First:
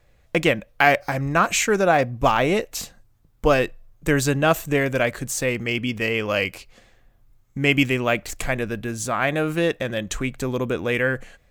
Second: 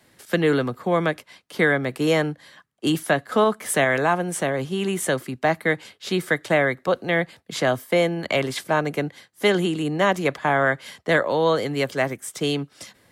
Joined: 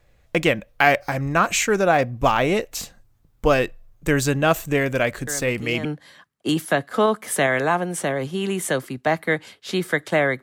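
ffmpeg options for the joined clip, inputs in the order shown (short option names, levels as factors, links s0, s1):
-filter_complex "[1:a]asplit=2[s0][s1];[0:a]apad=whole_dur=10.42,atrim=end=10.42,atrim=end=5.852[s2];[s1]atrim=start=2.228:end=6.8[s3];[s0]atrim=start=1.65:end=2.23,asetpts=PTS-STARTPTS,volume=0.237,afade=t=in:d=0.004:c=hsin,afade=t=out:st=0.576:d=0.004:c=hsin,adelay=5270[s4];[s2][s3]acrossfade=d=0.004:c1=hsin:c2=hsin[s5];[s5][s4]amix=inputs=2:normalize=0"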